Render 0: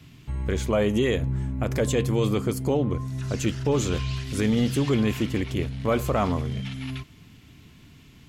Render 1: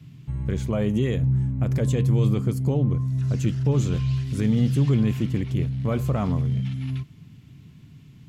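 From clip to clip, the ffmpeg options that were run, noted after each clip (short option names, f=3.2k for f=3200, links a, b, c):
-af "equalizer=f=140:w=0.94:g=14.5,volume=-7dB"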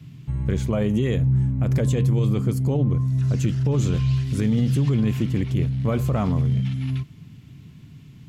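-af "alimiter=limit=-16dB:level=0:latency=1:release=37,volume=3dB"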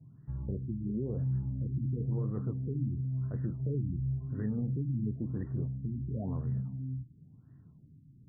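-af "flanger=delay=6.8:depth=8.3:regen=-57:speed=1.6:shape=triangular,afftfilt=real='re*lt(b*sr/1024,340*pow(2000/340,0.5+0.5*sin(2*PI*0.96*pts/sr)))':imag='im*lt(b*sr/1024,340*pow(2000/340,0.5+0.5*sin(2*PI*0.96*pts/sr)))':win_size=1024:overlap=0.75,volume=-8.5dB"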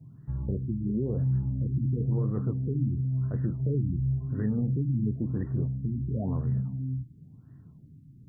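-af "acontrast=34"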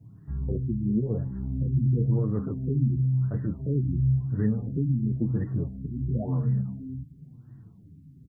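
-filter_complex "[0:a]asplit=2[a][b];[b]adelay=6.7,afreqshift=-0.91[c];[a][c]amix=inputs=2:normalize=1,volume=5dB"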